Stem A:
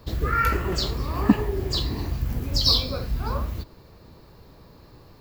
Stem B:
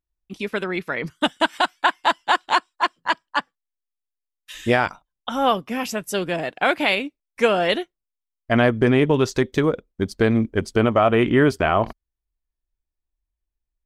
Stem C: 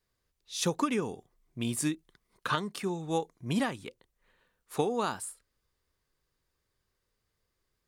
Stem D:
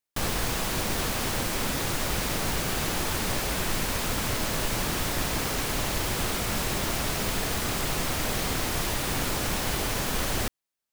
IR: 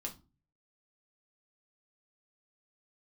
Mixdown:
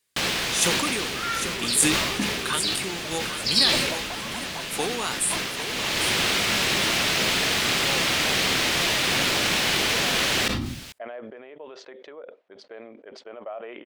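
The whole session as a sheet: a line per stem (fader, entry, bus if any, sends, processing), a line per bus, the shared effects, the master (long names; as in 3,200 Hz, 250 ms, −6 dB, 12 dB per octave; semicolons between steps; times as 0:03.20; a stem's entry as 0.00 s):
−13.0 dB, 0.90 s, send −6 dB, no echo send, no processing
−5.0 dB, 2.50 s, no send, no echo send, downward compressor 4 to 1, threshold −21 dBFS, peak gain reduction 8.5 dB; four-pole ladder band-pass 690 Hz, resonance 50%
−1.5 dB, 0.00 s, no send, echo send −9 dB, high shelf with overshoot 6,600 Hz +10 dB, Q 1.5
+2.5 dB, 0.00 s, send −12 dB, no echo send, high-shelf EQ 3,500 Hz −7 dB; automatic ducking −16 dB, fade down 1.65 s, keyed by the third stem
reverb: on, pre-delay 5 ms
echo: repeating echo 800 ms, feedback 32%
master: meter weighting curve D; level that may fall only so fast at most 33 dB per second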